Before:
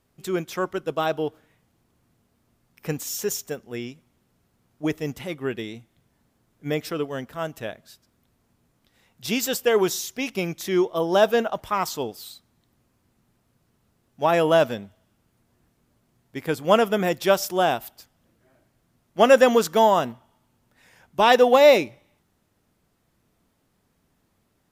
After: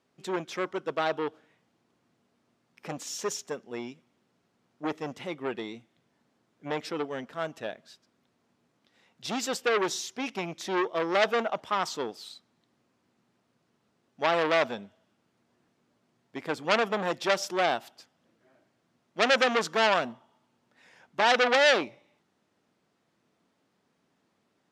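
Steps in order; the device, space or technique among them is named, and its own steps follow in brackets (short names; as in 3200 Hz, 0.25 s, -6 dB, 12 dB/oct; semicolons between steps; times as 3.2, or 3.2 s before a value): public-address speaker with an overloaded transformer (core saturation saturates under 4000 Hz; BPF 200–6100 Hz); gain -1.5 dB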